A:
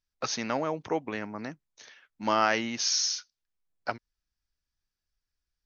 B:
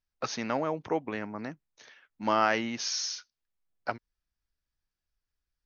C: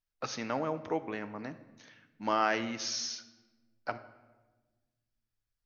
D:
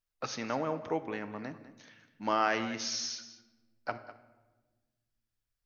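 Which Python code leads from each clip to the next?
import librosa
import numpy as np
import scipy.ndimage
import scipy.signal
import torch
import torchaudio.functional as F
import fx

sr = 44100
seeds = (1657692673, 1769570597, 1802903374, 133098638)

y1 = fx.high_shelf(x, sr, hz=4500.0, db=-9.0)
y2 = fx.room_shoebox(y1, sr, seeds[0], volume_m3=870.0, walls='mixed', distance_m=0.45)
y2 = y2 * 10.0 ** (-3.5 / 20.0)
y3 = y2 + 10.0 ** (-15.0 / 20.0) * np.pad(y2, (int(200 * sr / 1000.0), 0))[:len(y2)]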